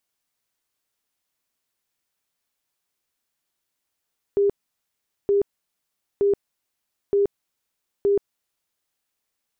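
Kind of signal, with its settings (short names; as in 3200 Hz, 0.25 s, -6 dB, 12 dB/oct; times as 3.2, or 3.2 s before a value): tone bursts 402 Hz, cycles 51, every 0.92 s, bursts 5, -15.5 dBFS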